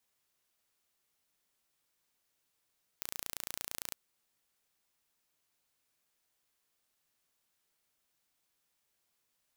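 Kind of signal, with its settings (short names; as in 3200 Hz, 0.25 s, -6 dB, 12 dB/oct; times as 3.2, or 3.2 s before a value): pulse train 28.8/s, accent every 0, -11 dBFS 0.91 s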